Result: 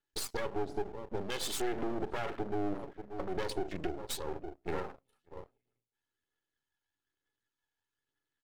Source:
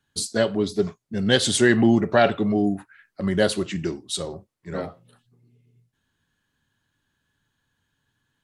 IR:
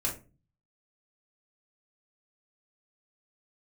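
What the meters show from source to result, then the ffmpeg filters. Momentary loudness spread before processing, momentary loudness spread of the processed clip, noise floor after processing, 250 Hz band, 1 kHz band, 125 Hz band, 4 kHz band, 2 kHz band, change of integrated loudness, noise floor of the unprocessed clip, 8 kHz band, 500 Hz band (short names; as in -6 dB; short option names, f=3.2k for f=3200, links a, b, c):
15 LU, 9 LU, under -85 dBFS, -17.5 dB, -10.5 dB, -17.5 dB, -15.5 dB, -17.5 dB, -16.0 dB, -76 dBFS, -13.5 dB, -14.0 dB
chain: -filter_complex "[0:a]asplit=2[a][b];[b]adelay=583.1,volume=-20dB,highshelf=f=4k:g=-13.1[c];[a][c]amix=inputs=2:normalize=0,volume=17dB,asoftclip=hard,volume=-17dB,asplit=2[d][e];[e]equalizer=f=270:t=o:w=1.4:g=9[f];[1:a]atrim=start_sample=2205[g];[f][g]afir=irnorm=-1:irlink=0,volume=-25dB[h];[d][h]amix=inputs=2:normalize=0,acompressor=threshold=-25dB:ratio=4,highpass=f=58:w=0.5412,highpass=f=58:w=1.3066,lowshelf=f=180:t=q:w=1.5:g=-10,aecho=1:1:2.3:0.7,afwtdn=0.0141,aphaser=in_gain=1:out_gain=1:delay=1.4:decay=0.4:speed=1.1:type=triangular,alimiter=level_in=0.5dB:limit=-24dB:level=0:latency=1:release=398,volume=-0.5dB,aeval=exprs='max(val(0),0)':c=same,volume=2dB"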